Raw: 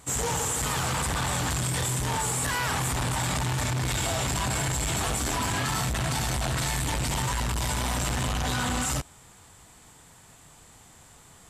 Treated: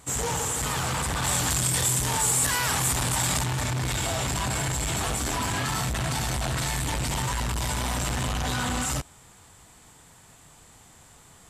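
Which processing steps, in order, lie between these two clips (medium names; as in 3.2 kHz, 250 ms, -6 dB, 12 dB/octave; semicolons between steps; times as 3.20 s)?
1.23–3.44 s: treble shelf 4.2 kHz +8.5 dB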